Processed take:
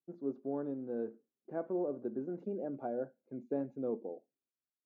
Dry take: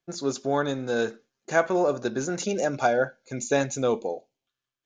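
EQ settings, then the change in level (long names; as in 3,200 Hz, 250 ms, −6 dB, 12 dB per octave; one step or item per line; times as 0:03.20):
four-pole ladder band-pass 370 Hz, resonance 25%
high-frequency loss of the air 68 metres
low-shelf EQ 270 Hz +12 dB
−4.0 dB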